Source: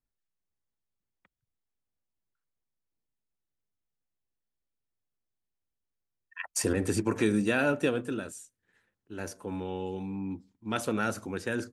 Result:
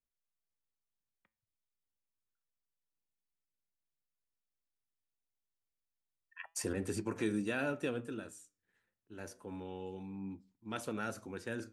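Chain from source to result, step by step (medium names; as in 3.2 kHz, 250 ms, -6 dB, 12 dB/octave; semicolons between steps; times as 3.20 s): flange 0.29 Hz, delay 4.8 ms, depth 5.7 ms, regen +85%; trim -4.5 dB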